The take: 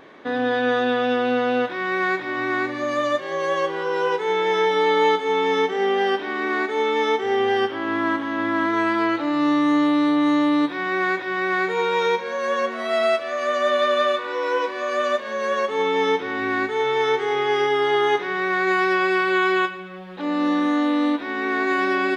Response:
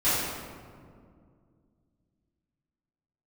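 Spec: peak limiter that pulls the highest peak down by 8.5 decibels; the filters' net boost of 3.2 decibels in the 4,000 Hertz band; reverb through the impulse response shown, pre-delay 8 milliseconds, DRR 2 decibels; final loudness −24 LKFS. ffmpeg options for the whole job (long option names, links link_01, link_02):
-filter_complex "[0:a]equalizer=frequency=4000:width_type=o:gain=4,alimiter=limit=-17.5dB:level=0:latency=1,asplit=2[link_01][link_02];[1:a]atrim=start_sample=2205,adelay=8[link_03];[link_02][link_03]afir=irnorm=-1:irlink=0,volume=-16.5dB[link_04];[link_01][link_04]amix=inputs=2:normalize=0,volume=-2dB"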